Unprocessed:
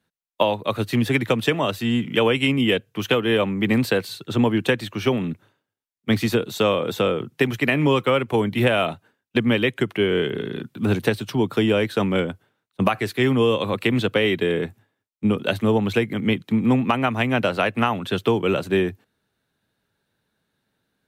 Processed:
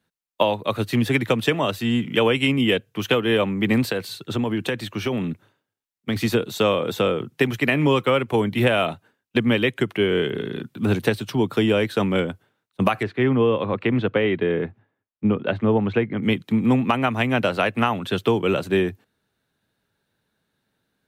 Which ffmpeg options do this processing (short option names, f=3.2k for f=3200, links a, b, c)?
-filter_complex "[0:a]asettb=1/sr,asplit=3[a][b][c];[a]atrim=end=3.824[d];[b]atrim=start=3.82:end=6.16,asetpts=PTS-STARTPTS,afade=t=in:d=0.004:c=qsin,afade=t=out:st=2.336:d=0.004:c=qsin,acompressor=threshold=-19dB:ratio=6:attack=3.2:release=140:knee=1:detection=peak[e];[c]atrim=start=6.156[f];[d][e]acrossfade=d=0.004:c1=hsin:c2=qsin[g];[g][f]acrossfade=d=0.004:c1=qsin:c2=hsin,asettb=1/sr,asplit=3[h][i][j];[h]atrim=end=13.034[k];[i]atrim=start=13.03:end=16.23,asetpts=PTS-STARTPTS,afade=t=in:d=0.004:c=qsin,afade=t=out:st=3.196:d=0.004:c=qsin,lowpass=2.1k[l];[j]atrim=start=16.226[m];[k][l]acrossfade=d=0.004:c1=hsin:c2=qsin[n];[n][m]acrossfade=d=0.004:c1=qsin:c2=hsin"